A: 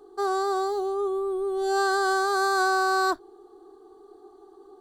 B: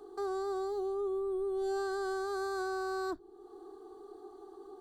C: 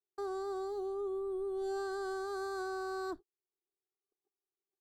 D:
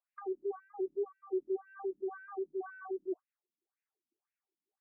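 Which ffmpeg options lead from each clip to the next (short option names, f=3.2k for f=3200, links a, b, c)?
-filter_complex "[0:a]acrossover=split=310[a][b];[b]acompressor=threshold=-46dB:ratio=2.5[c];[a][c]amix=inputs=2:normalize=0"
-af "agate=range=-49dB:threshold=-42dB:ratio=16:detection=peak,volume=-3dB"
-filter_complex "[0:a]bandreject=f=60:t=h:w=6,bandreject=f=120:t=h:w=6,bandreject=f=180:t=h:w=6,acrossover=split=430[a][b];[b]acompressor=threshold=-52dB:ratio=4[c];[a][c]amix=inputs=2:normalize=0,afftfilt=real='re*between(b*sr/1024,210*pow(2100/210,0.5+0.5*sin(2*PI*1.9*pts/sr))/1.41,210*pow(2100/210,0.5+0.5*sin(2*PI*1.9*pts/sr))*1.41)':imag='im*between(b*sr/1024,210*pow(2100/210,0.5+0.5*sin(2*PI*1.9*pts/sr))/1.41,210*pow(2100/210,0.5+0.5*sin(2*PI*1.9*pts/sr))*1.41)':win_size=1024:overlap=0.75,volume=9dB"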